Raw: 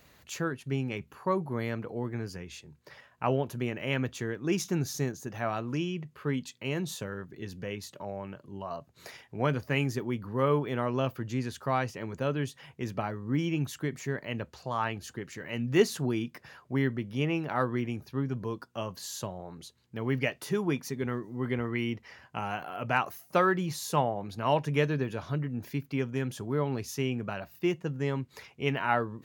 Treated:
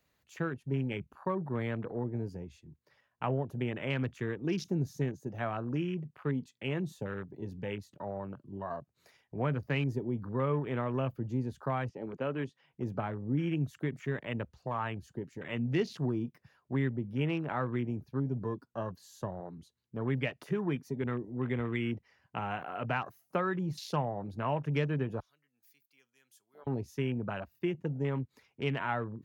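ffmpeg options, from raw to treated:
ffmpeg -i in.wav -filter_complex "[0:a]asettb=1/sr,asplit=3[link_01][link_02][link_03];[link_01]atrim=end=11.894[link_04];[link_02]atrim=start=11.89:end=12.74,asetpts=PTS-STARTPTS,afade=type=in:duration=0.004:curve=qsin,afade=type=out:start_time=0.846:duration=0.004:curve=qsin,highpass=190,lowpass=5500[link_05];[link_03]atrim=start=12.736[link_06];[link_04][link_05]acrossfade=duration=0.004:curve1=hsin:curve2=qsin[link_07];[link_07][link_06]acrossfade=duration=0.004:curve1=qsin:curve2=hsin,asettb=1/sr,asplit=3[link_08][link_09][link_10];[link_08]atrim=end=25.204[link_11];[link_09]atrim=start=25.2:end=26.67,asetpts=PTS-STARTPTS,afade=type=in:duration=0.004:curve=qsin,afade=type=out:start_time=1.466:duration=0.004:curve=qsin,aderivative[link_12];[link_10]atrim=start=26.666[link_13];[link_11][link_12]acrossfade=duration=0.004:curve1=hsin:curve2=qsin[link_14];[link_14][link_13]acrossfade=duration=0.004:curve1=qsin:curve2=hsin,afwtdn=0.00891,acrossover=split=170[link_15][link_16];[link_16]acompressor=threshold=-32dB:ratio=2.5[link_17];[link_15][link_17]amix=inputs=2:normalize=0" out.wav

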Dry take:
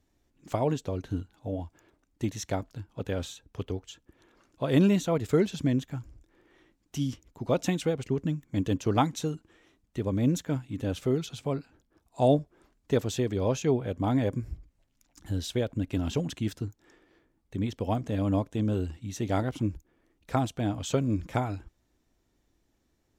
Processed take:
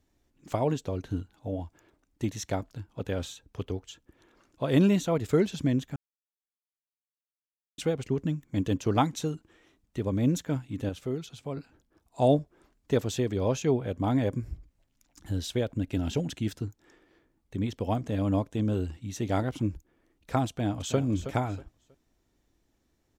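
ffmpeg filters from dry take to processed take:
ffmpeg -i in.wav -filter_complex "[0:a]asettb=1/sr,asplit=3[link_01][link_02][link_03];[link_01]atrim=end=15.834[link_04];[link_02]atrim=start=15.83:end=16.51,asetpts=PTS-STARTPTS,afade=type=in:duration=0.004:curve=qsin,afade=type=out:start_time=0.676:duration=0.004:curve=qsin,bandreject=frequency=1100:width=5[link_05];[link_03]atrim=start=16.506[link_06];[link_04][link_05]acrossfade=duration=0.004:curve1=hsin:curve2=qsin[link_07];[link_07][link_06]acrossfade=duration=0.004:curve1=qsin:curve2=hsin,asplit=2[link_08][link_09];[link_09]afade=type=in:start_time=20.48:duration=0.01,afade=type=out:start_time=20.98:duration=0.01,aecho=0:1:320|640|960:0.281838|0.0704596|0.0176149[link_10];[link_08][link_10]amix=inputs=2:normalize=0,asplit=5[link_11][link_12][link_13][link_14][link_15];[link_11]atrim=end=5.96,asetpts=PTS-STARTPTS,afade=type=out:start_time=5.956:duration=0.004:curve=hsin[link_16];[link_12]atrim=start=5.96:end=7.78,asetpts=PTS-STARTPTS,volume=0[link_17];[link_13]atrim=start=7.78:end=10.892,asetpts=PTS-STARTPTS,afade=type=in:duration=0.004:curve=hsin[link_18];[link_14]atrim=start=10.888:end=11.572,asetpts=PTS-STARTPTS,volume=-5.5dB[link_19];[link_15]atrim=start=11.568[link_20];[link_16][link_17][link_18]concat=n=3:v=0:a=1[link_21];[link_21][link_19]acrossfade=duration=0.004:curve1=hsin:curve2=hsin[link_22];[link_22][link_20]acrossfade=duration=0.004:curve1=hsin:curve2=hsin" out.wav

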